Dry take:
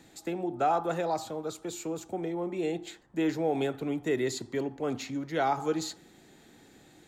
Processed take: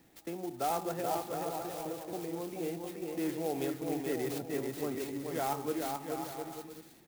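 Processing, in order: notch 1500 Hz, Q 20; bouncing-ball echo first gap 0.43 s, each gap 0.65×, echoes 5; clock jitter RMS 0.056 ms; gain -6.5 dB

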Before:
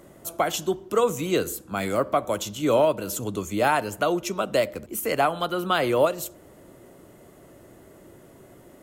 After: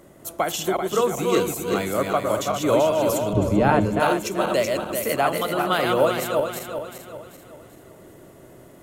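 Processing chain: regenerating reverse delay 0.194 s, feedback 64%, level -3 dB; 3.33–4 RIAA curve playback

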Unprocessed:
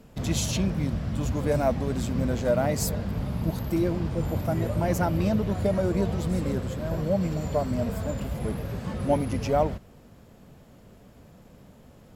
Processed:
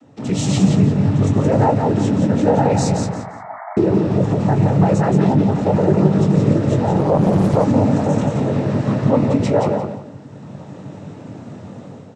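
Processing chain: tilt shelf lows +4.5 dB, about 1200 Hz; AGC gain up to 12 dB; limiter -10 dBFS, peak gain reduction 8.5 dB; noise vocoder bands 12; 3.06–3.77 brick-wall FIR band-pass 610–2300 Hz; doubler 21 ms -8 dB; feedback echo 0.173 s, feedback 25%, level -5.5 dB; 6.99–7.64 Doppler distortion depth 0.76 ms; gain +2 dB

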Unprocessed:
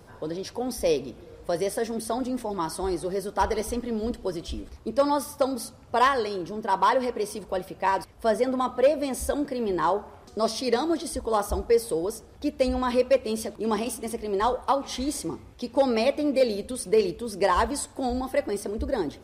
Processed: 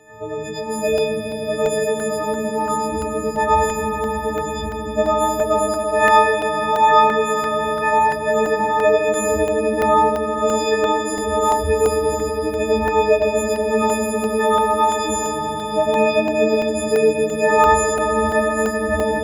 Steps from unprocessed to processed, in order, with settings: frequency quantiser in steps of 6 st; low shelf 98 Hz +11 dB; swelling echo 81 ms, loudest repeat 5, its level -9.5 dB; reverb RT60 0.85 s, pre-delay 97 ms, DRR 0 dB; crackling interface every 0.34 s, samples 64, zero, from 0.98; gain -9.5 dB

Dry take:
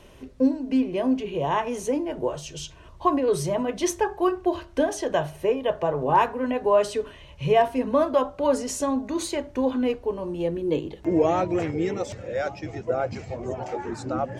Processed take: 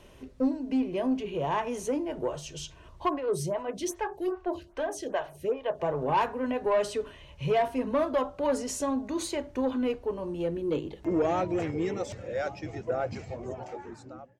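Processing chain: ending faded out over 1.23 s; soft clip -15 dBFS, distortion -17 dB; 3.09–5.8 photocell phaser 2.5 Hz; gain -3.5 dB

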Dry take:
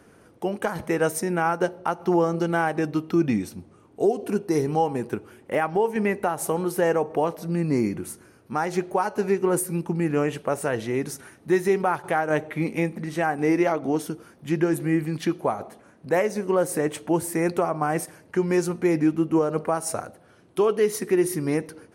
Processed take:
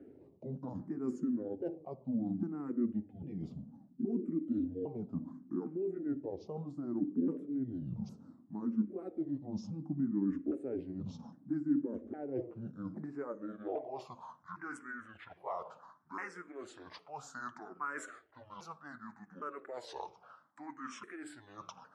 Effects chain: repeated pitch sweeps -10.5 st, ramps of 0.809 s; reverse; compressor 12:1, threshold -33 dBFS, peak gain reduction 17 dB; reverse; dynamic EQ 6300 Hz, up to +6 dB, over -55 dBFS, Q 0.93; band-pass sweep 250 Hz -> 1300 Hz, 12.19–14.59; on a send at -20 dB: reverb RT60 0.40 s, pre-delay 50 ms; on the sum: endless phaser +0.66 Hz; gain +8.5 dB

